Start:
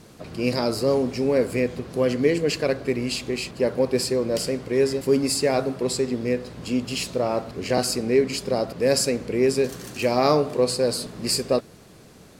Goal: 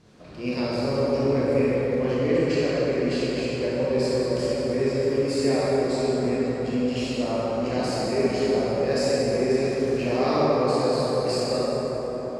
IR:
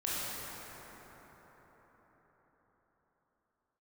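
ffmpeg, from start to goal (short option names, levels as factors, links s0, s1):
-filter_complex "[0:a]lowpass=6000[s0];[1:a]atrim=start_sample=2205[s1];[s0][s1]afir=irnorm=-1:irlink=0,volume=0.422"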